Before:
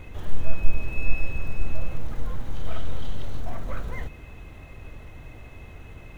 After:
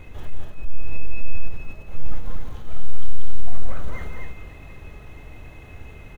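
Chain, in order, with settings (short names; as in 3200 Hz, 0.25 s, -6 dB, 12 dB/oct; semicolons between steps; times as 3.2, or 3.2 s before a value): reverse delay 0.304 s, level -14 dB; compressor 4:1, threshold -19 dBFS, peak gain reduction 11.5 dB; soft clip -16 dBFS, distortion -22 dB; resonator 420 Hz, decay 0.71 s, mix 70%; loudspeakers at several distances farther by 61 m -7 dB, 85 m -4 dB; gain +9.5 dB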